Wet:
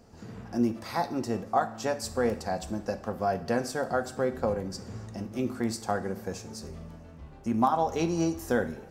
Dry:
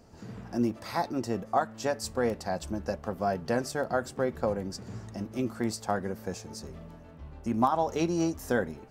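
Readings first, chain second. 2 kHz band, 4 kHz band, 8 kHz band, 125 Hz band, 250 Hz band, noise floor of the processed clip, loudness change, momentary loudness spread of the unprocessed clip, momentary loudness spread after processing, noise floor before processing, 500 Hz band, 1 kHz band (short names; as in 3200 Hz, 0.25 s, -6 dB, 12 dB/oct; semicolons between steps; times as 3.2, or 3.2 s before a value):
0.0 dB, +0.5 dB, +0.5 dB, +0.5 dB, +1.0 dB, -48 dBFS, +1.0 dB, 14 LU, 14 LU, -49 dBFS, +0.5 dB, +1.0 dB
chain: two-slope reverb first 0.56 s, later 2.6 s, from -18 dB, DRR 9.5 dB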